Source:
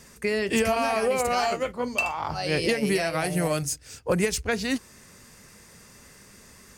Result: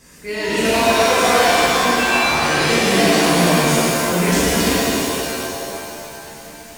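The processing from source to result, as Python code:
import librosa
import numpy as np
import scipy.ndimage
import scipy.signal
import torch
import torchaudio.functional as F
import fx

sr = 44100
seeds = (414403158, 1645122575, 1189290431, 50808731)

y = fx.transient(x, sr, attack_db=-9, sustain_db=6)
y = fx.rev_shimmer(y, sr, seeds[0], rt60_s=2.6, semitones=7, shimmer_db=-2, drr_db=-9.0)
y = y * 10.0 ** (-1.5 / 20.0)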